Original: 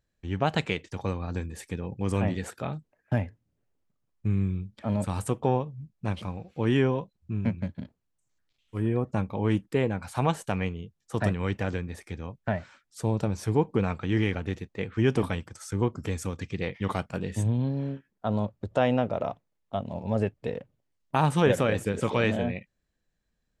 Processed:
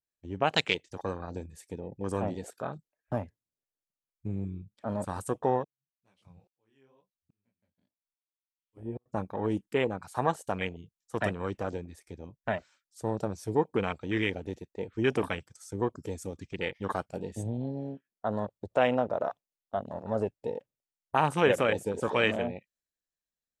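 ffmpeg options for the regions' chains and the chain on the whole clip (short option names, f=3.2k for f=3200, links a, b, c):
-filter_complex "[0:a]asettb=1/sr,asplit=3[a][b][c];[a]atrim=end=5.644[d];[b]atrim=start=5.64:end=9.06,asetpts=PTS-STARTPTS,afade=t=in:d=0.004:c=qsin,afade=t=out:st=3.416:d=0.004:c=qsin,flanger=delay=15.5:depth=7.1:speed=2.1,aeval=exprs='val(0)*pow(10,-35*if(lt(mod(-1.2*n/s,1),2*abs(-1.2)/1000),1-mod(-1.2*n/s,1)/(2*abs(-1.2)/1000),(mod(-1.2*n/s,1)-2*abs(-1.2)/1000)/(1-2*abs(-1.2)/1000))/20)':c=same[e];[c]atrim=start=9.056[f];[d][e]acrossfade=d=0.004:c1=hsin:c2=qsin[g];[g][f]acrossfade=d=0.004:c1=qsin:c2=hsin,bass=f=250:g=-10,treble=f=4k:g=8,afwtdn=0.0178,adynamicequalizer=threshold=0.00562:dfrequency=2100:dqfactor=0.7:tfrequency=2100:tqfactor=0.7:attack=5:release=100:ratio=0.375:range=2.5:mode=boostabove:tftype=highshelf"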